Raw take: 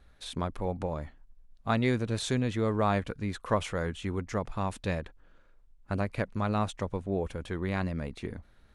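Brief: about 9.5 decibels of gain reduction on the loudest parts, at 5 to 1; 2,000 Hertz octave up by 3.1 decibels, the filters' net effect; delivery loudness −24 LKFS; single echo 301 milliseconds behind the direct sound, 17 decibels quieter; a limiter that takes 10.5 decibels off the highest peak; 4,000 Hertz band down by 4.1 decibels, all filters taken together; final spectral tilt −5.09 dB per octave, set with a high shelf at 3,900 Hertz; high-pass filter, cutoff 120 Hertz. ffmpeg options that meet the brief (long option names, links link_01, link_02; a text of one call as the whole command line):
ffmpeg -i in.wav -af "highpass=120,equalizer=frequency=2000:width_type=o:gain=6,highshelf=frequency=3900:gain=-7,equalizer=frequency=4000:width_type=o:gain=-3,acompressor=threshold=-32dB:ratio=5,alimiter=level_in=3.5dB:limit=-24dB:level=0:latency=1,volume=-3.5dB,aecho=1:1:301:0.141,volume=17.5dB" out.wav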